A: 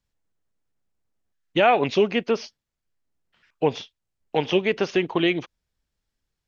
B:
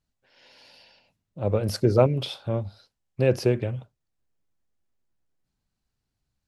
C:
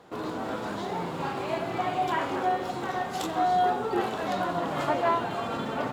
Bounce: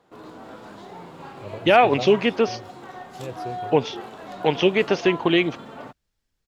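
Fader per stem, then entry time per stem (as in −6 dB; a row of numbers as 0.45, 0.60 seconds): +2.5, −14.0, −8.5 decibels; 0.10, 0.00, 0.00 seconds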